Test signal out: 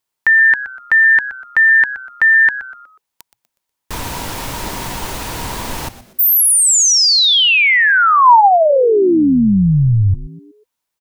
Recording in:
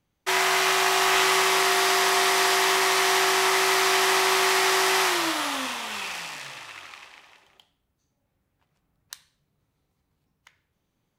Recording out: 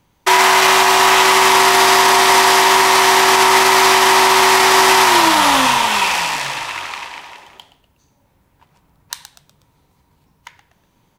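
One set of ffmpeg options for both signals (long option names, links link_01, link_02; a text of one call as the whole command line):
ffmpeg -i in.wav -filter_complex "[0:a]equalizer=frequency=950:width=7.7:gain=11,asplit=5[link_01][link_02][link_03][link_04][link_05];[link_02]adelay=122,afreqshift=-130,volume=-15dB[link_06];[link_03]adelay=244,afreqshift=-260,volume=-23dB[link_07];[link_04]adelay=366,afreqshift=-390,volume=-30.9dB[link_08];[link_05]adelay=488,afreqshift=-520,volume=-38.9dB[link_09];[link_01][link_06][link_07][link_08][link_09]amix=inputs=5:normalize=0,alimiter=level_in=16dB:limit=-1dB:release=50:level=0:latency=1,volume=-1dB" out.wav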